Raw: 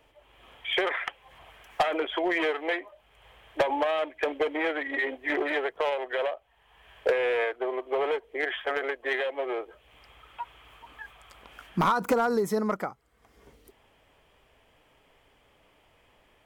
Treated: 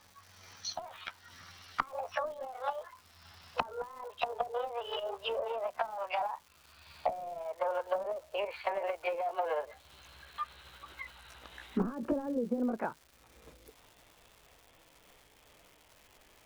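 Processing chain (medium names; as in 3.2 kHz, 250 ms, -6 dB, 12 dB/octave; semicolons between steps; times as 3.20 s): pitch bend over the whole clip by +11 st ending unshifted; low-pass that closes with the level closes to 320 Hz, closed at -24 dBFS; crackle 420 per s -48 dBFS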